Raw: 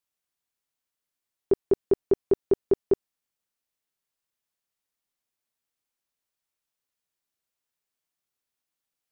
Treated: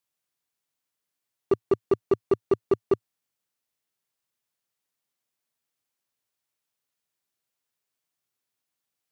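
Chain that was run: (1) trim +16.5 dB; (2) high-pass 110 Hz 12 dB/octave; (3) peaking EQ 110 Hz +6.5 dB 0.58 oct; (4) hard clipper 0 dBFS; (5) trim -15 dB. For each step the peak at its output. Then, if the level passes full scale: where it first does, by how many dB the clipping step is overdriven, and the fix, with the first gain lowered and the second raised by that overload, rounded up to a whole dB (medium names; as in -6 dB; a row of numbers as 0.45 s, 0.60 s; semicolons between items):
+3.5 dBFS, +4.0 dBFS, +4.5 dBFS, 0.0 dBFS, -15.0 dBFS; step 1, 4.5 dB; step 1 +11.5 dB, step 5 -10 dB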